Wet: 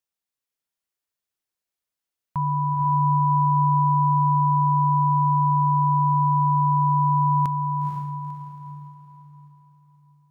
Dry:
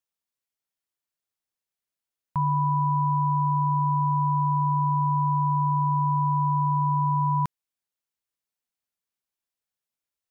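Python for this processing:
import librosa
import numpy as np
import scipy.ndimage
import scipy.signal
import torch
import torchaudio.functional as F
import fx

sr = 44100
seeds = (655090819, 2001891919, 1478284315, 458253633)

y = fx.spec_expand(x, sr, power=1.5, at=(5.63, 6.14))
y = fx.echo_diffused(y, sr, ms=487, feedback_pct=42, wet_db=-4.0)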